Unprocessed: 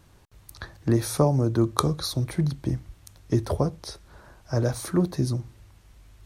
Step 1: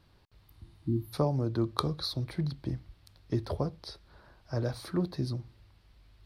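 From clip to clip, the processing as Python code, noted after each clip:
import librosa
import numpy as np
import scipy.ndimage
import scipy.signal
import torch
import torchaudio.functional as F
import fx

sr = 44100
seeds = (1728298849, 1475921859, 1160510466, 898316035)

y = fx.spec_repair(x, sr, seeds[0], start_s=0.51, length_s=0.6, low_hz=350.0, high_hz=11000.0, source='before')
y = fx.high_shelf_res(y, sr, hz=5500.0, db=-6.0, q=3.0)
y = F.gain(torch.from_numpy(y), -7.5).numpy()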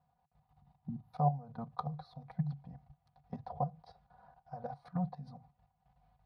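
y = x + 0.99 * np.pad(x, (int(4.1 * sr / 1000.0), 0))[:len(x)]
y = fx.level_steps(y, sr, step_db=14)
y = fx.double_bandpass(y, sr, hz=330.0, octaves=2.4)
y = F.gain(torch.from_numpy(y), 9.0).numpy()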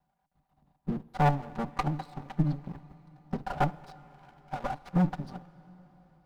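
y = fx.lower_of_two(x, sr, delay_ms=5.1)
y = fx.leveller(y, sr, passes=2)
y = fx.rev_plate(y, sr, seeds[1], rt60_s=4.7, hf_ratio=0.9, predelay_ms=0, drr_db=18.5)
y = F.gain(torch.from_numpy(y), 4.0).numpy()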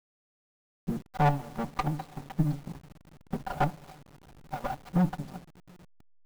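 y = fx.delta_hold(x, sr, step_db=-46.5)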